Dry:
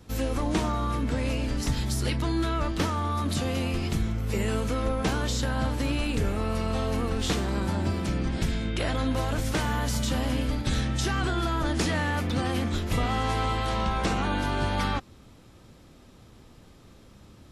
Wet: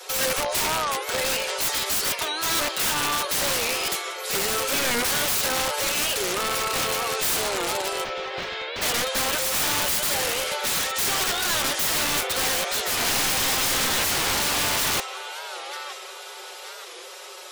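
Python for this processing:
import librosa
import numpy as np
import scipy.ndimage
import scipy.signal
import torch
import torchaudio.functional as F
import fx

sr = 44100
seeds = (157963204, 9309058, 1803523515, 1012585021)

p1 = fx.over_compress(x, sr, threshold_db=-35.0, ratio=-1.0)
p2 = x + F.gain(torch.from_numpy(p1), -1.0).numpy()
p3 = scipy.signal.sosfilt(scipy.signal.butter(16, 390.0, 'highpass', fs=sr, output='sos'), p2)
p4 = fx.high_shelf(p3, sr, hz=2100.0, db=7.0)
p5 = p4 + 0.67 * np.pad(p4, (int(5.4 * sr / 1000.0), 0))[:len(p4)]
p6 = 10.0 ** (-12.0 / 20.0) * np.tanh(p5 / 10.0 ** (-12.0 / 20.0))
p7 = fx.echo_thinned(p6, sr, ms=926, feedback_pct=49, hz=810.0, wet_db=-13)
p8 = (np.mod(10.0 ** (22.0 / 20.0) * p7 + 1.0, 2.0) - 1.0) / 10.0 ** (22.0 / 20.0)
p9 = fx.spec_gate(p8, sr, threshold_db=-30, keep='strong')
p10 = fx.air_absorb(p9, sr, metres=240.0, at=(8.03, 8.82), fade=0.02)
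p11 = fx.record_warp(p10, sr, rpm=45.0, depth_cents=160.0)
y = F.gain(torch.from_numpy(p11), 3.5).numpy()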